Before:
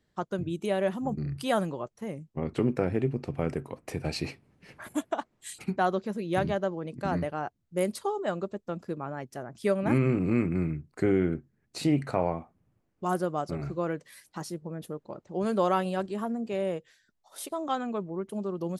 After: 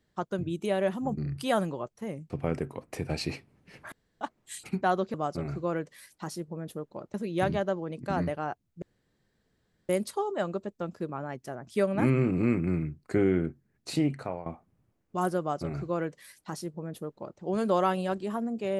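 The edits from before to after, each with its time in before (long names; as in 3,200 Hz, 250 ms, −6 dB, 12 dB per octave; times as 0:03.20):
0:02.30–0:03.25: remove
0:04.87–0:05.16: fill with room tone
0:07.77: splice in room tone 1.07 s
0:11.80–0:12.34: fade out, to −15.5 dB
0:13.28–0:15.28: duplicate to 0:06.09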